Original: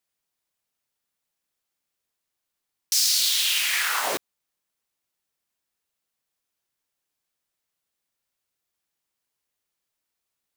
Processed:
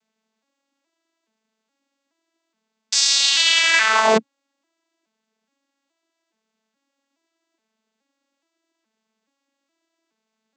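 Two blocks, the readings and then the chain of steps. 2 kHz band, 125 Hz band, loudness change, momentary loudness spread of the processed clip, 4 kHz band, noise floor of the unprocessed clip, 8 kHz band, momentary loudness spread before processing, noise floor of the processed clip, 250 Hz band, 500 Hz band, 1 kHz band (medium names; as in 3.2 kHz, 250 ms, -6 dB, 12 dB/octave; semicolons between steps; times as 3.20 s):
+9.5 dB, no reading, +5.5 dB, 6 LU, +6.0 dB, -83 dBFS, +2.5 dB, 9 LU, -79 dBFS, +16.0 dB, +15.0 dB, +11.0 dB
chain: vocoder on a broken chord major triad, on A3, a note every 421 ms; trim +8.5 dB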